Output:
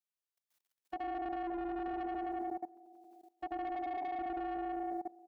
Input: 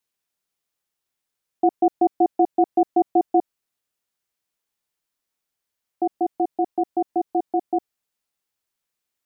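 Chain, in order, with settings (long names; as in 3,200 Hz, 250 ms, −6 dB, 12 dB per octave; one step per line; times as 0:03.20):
feedback delay that plays each chunk backwards 157 ms, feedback 73%, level −0.5 dB
low-shelf EQ 380 Hz −9.5 dB
on a send: repeating echo 138 ms, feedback 45%, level −21 dB
on the sum: downward compressor 10 to 1, threshold −25 dBFS, peak gain reduction 11.5 dB
feedback delay network reverb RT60 0.67 s, low-frequency decay 1×, high-frequency decay 0.8×, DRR 15 dB
soft clipping −29 dBFS, distortion −11 dB
phase-vocoder stretch with locked phases 0.57×
output level in coarse steps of 20 dB
level +2 dB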